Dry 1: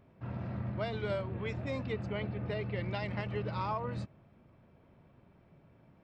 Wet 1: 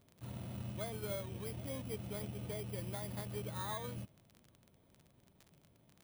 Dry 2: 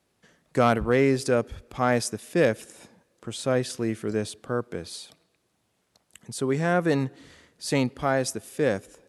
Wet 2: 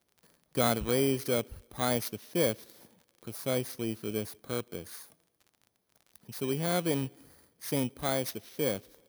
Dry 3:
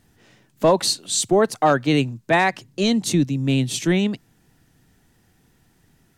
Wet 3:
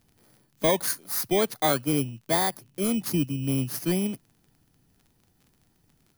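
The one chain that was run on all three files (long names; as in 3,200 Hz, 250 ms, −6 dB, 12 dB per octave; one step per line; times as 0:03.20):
samples in bit-reversed order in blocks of 16 samples
surface crackle 37 per second −39 dBFS
level −6.5 dB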